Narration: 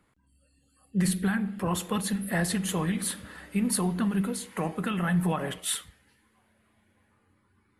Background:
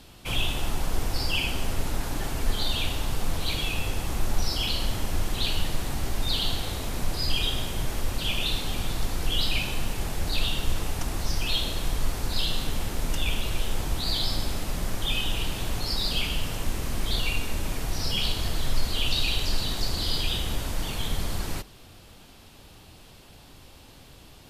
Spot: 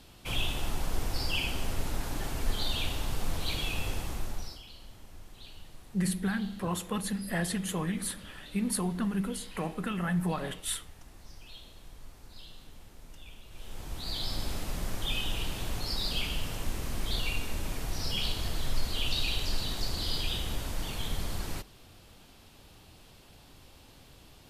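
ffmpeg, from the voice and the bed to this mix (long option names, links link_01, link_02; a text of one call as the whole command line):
ffmpeg -i stem1.wav -i stem2.wav -filter_complex "[0:a]adelay=5000,volume=-4dB[link_01];[1:a]volume=13dB,afade=type=out:start_time=3.93:duration=0.69:silence=0.125893,afade=type=in:start_time=13.49:duration=1.03:silence=0.133352[link_02];[link_01][link_02]amix=inputs=2:normalize=0" out.wav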